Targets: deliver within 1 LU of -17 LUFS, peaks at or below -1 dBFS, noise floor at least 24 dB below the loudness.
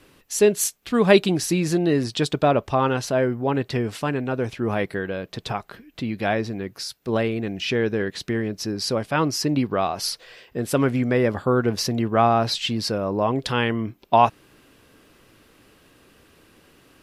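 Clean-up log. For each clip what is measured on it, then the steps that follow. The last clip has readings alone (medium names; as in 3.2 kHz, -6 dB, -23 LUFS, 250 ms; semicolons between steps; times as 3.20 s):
loudness -23.0 LUFS; peak level -3.0 dBFS; loudness target -17.0 LUFS
-> trim +6 dB; peak limiter -1 dBFS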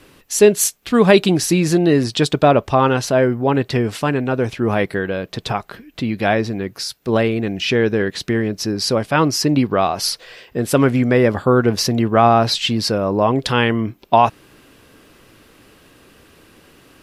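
loudness -17.0 LUFS; peak level -1.0 dBFS; noise floor -50 dBFS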